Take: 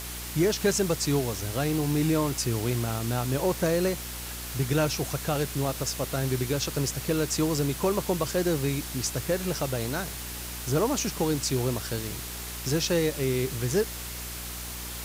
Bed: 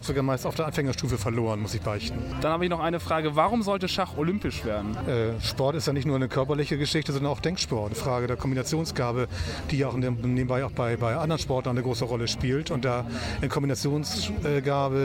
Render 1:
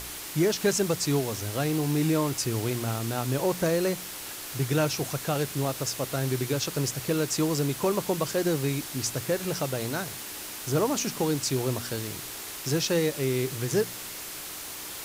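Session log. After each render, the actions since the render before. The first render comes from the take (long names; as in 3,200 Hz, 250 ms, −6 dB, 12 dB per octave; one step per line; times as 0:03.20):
hum removal 60 Hz, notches 4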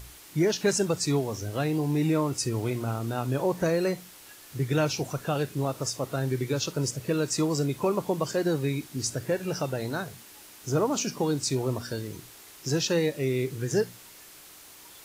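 noise reduction from a noise print 11 dB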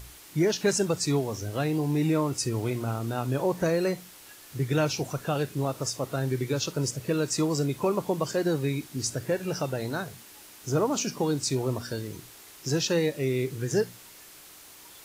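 no processing that can be heard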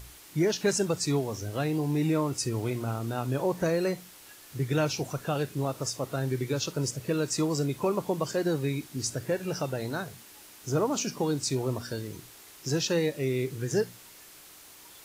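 level −1.5 dB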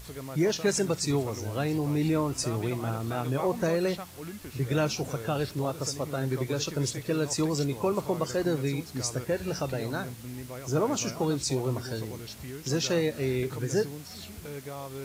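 mix in bed −14.5 dB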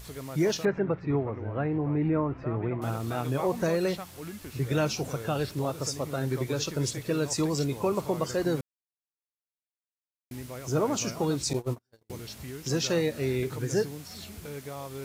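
0:00.65–0:02.82: low-pass filter 2,000 Hz 24 dB per octave
0:08.61–0:10.31: silence
0:11.53–0:12.10: noise gate −29 dBFS, range −46 dB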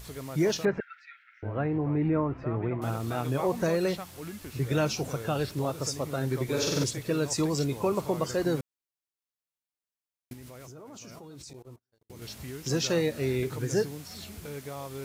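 0:00.80–0:01.43: linear-phase brick-wall high-pass 1,300 Hz
0:06.44–0:06.84: flutter between parallel walls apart 8 metres, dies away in 1.3 s
0:10.33–0:12.22: output level in coarse steps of 23 dB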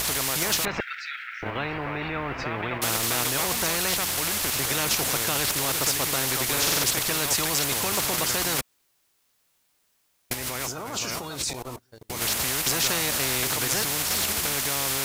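in parallel at +2 dB: output level in coarse steps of 11 dB
on the sum: every bin compressed towards the loudest bin 4 to 1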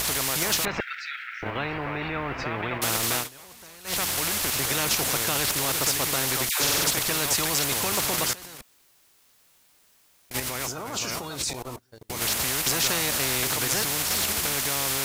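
0:03.16–0:03.97: duck −21 dB, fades 0.13 s
0:06.49–0:06.90: all-pass dispersion lows, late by 113 ms, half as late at 940 Hz
0:08.33–0:10.40: compressor whose output falls as the input rises −34 dBFS, ratio −0.5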